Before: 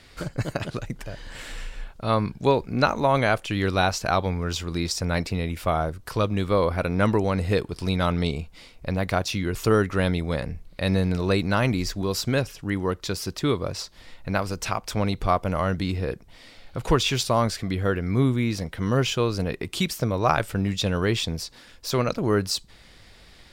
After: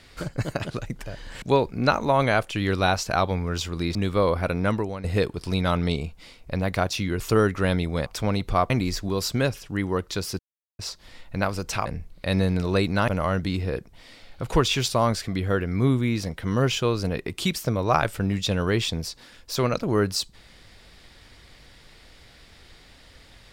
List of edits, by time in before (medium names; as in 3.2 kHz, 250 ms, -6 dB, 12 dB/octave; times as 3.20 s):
1.42–2.37 s: delete
4.90–6.30 s: delete
6.88–7.39 s: fade out, to -14 dB
10.41–11.63 s: swap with 14.79–15.43 s
13.32–13.72 s: mute